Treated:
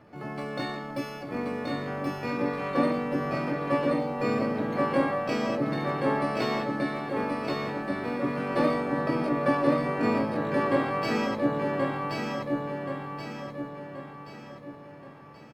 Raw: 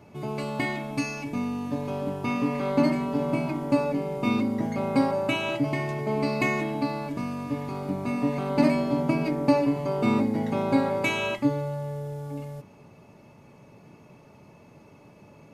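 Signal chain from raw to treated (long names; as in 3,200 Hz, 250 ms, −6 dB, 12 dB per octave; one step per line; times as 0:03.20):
high shelf with overshoot 2,100 Hz −8 dB, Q 1.5
pitch-shifted copies added +4 semitones −11 dB, +12 semitones −2 dB
repeating echo 1,078 ms, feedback 45%, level −3 dB
level −6 dB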